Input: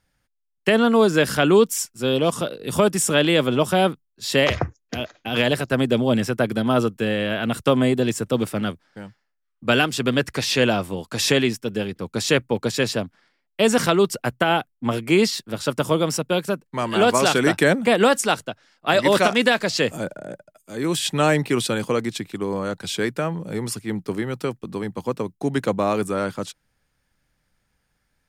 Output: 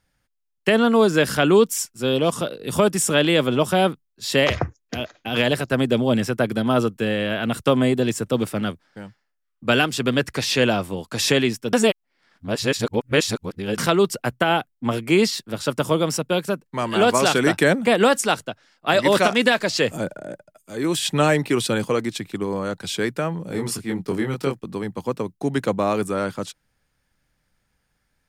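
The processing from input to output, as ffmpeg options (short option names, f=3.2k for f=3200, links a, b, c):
-filter_complex "[0:a]asplit=3[a][b][c];[a]afade=t=out:st=19.44:d=0.02[d];[b]aphaser=in_gain=1:out_gain=1:delay=3.4:decay=0.22:speed=1.7:type=sinusoidal,afade=t=in:st=19.44:d=0.02,afade=t=out:st=22.46:d=0.02[e];[c]afade=t=in:st=22.46:d=0.02[f];[d][e][f]amix=inputs=3:normalize=0,asettb=1/sr,asplit=3[g][h][i];[g]atrim=end=23.484[j];[h]atrim=start=23.48:end=24.6,asetpts=PTS-STARTPTS,afade=t=in:d=0.004:c=qsin,afade=t=out:st=1.116:d=0.004:c=qsin,asplit=2[k][l];[l]adelay=22,volume=-3dB[m];[k][m]amix=inputs=2:normalize=0,atrim=end_sample=49392[n];[i]atrim=start=24.596[o];[j][n]acrossfade=d=0.004:c1=hsin:c2=qsin[p];[p][o]acrossfade=d=0.004:c1=qsin:c2=hsin,asplit=3[q][r][s];[q]atrim=end=11.732[t];[r]atrim=start=11.728:end=13.782,asetpts=PTS-STARTPTS,areverse[u];[s]atrim=start=13.778[v];[t][u]acrossfade=d=0.004:c1=hsin:c2=hsin[w];[w][v]acrossfade=d=0.004:c1=hsin:c2=hsin"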